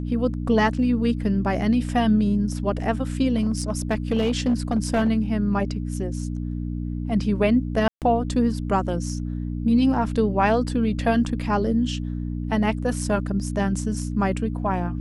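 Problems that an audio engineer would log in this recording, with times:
mains hum 60 Hz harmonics 5 −28 dBFS
0:03.37–0:05.10: clipping −16 dBFS
0:07.88–0:08.02: drop-out 138 ms

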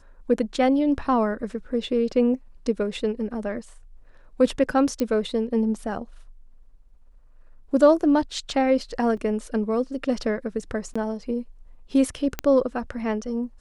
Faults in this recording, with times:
0:05.00: click −14 dBFS
0:09.17: drop-out 4 ms
0:10.94–0:10.96: drop-out 15 ms
0:12.39: click −10 dBFS

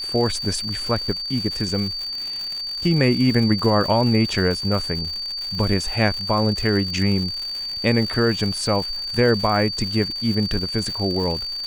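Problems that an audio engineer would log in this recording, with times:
surface crackle 170 per second −27 dBFS
whistle 4,600 Hz −26 dBFS

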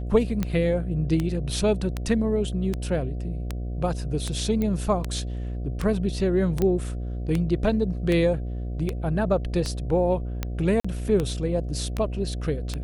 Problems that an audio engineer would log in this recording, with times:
mains buzz 60 Hz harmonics 12 −30 dBFS
scratch tick 78 rpm −13 dBFS
0:04.62: click −16 dBFS
0:06.62: click −12 dBFS
0:10.80–0:10.85: drop-out 45 ms

